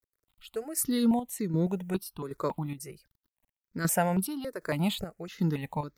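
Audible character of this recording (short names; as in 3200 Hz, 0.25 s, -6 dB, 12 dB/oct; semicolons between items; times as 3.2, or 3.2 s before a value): a quantiser's noise floor 12-bit, dither none; chopped level 1.3 Hz, depth 60%, duty 55%; notches that jump at a steady rate 3.6 Hz 790–2900 Hz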